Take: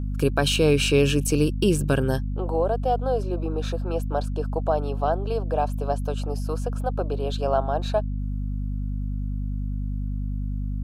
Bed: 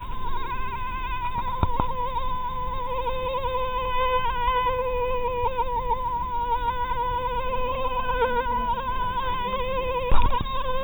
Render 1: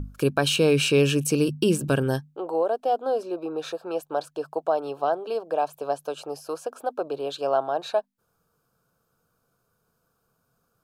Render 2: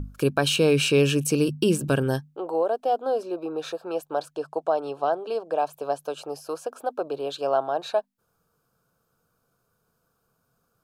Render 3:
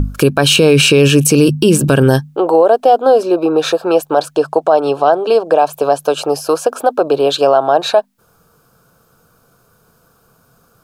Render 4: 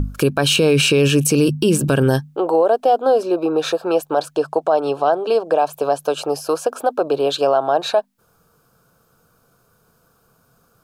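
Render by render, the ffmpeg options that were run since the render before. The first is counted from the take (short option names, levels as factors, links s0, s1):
-af "bandreject=f=50:t=h:w=6,bandreject=f=100:t=h:w=6,bandreject=f=150:t=h:w=6,bandreject=f=200:t=h:w=6,bandreject=f=250:t=h:w=6"
-filter_complex "[0:a]asettb=1/sr,asplit=3[s0][s1][s2];[s0]atrim=end=4.354[s3];[s1]atrim=start=4.35:end=5.62,asetpts=PTS-STARTPTS,afade=t=in:d=0.004:c=qsin,afade=t=out:st=1.266:d=0.004:c=qsin,lowpass=f=11000:w=0.5412,lowpass=f=11000:w=1.3066[s4];[s2]atrim=start=5.616[s5];[s3][s4]acrossfade=d=0.004:c1=hsin:c2=qsin[s6];[s6][s5]acrossfade=d=0.004:c1=qsin:c2=hsin"
-filter_complex "[0:a]asplit=2[s0][s1];[s1]acompressor=threshold=0.0398:ratio=6,volume=0.891[s2];[s0][s2]amix=inputs=2:normalize=0,alimiter=level_in=4.47:limit=0.891:release=50:level=0:latency=1"
-af "volume=0.531"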